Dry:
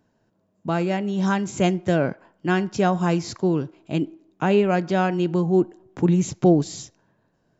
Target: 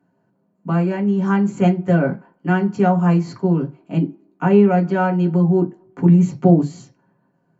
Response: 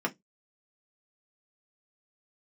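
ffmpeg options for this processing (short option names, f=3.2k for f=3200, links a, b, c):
-filter_complex "[1:a]atrim=start_sample=2205,atrim=end_sample=3969,asetrate=35280,aresample=44100[a];[0:a][a]afir=irnorm=-1:irlink=0,volume=-8.5dB"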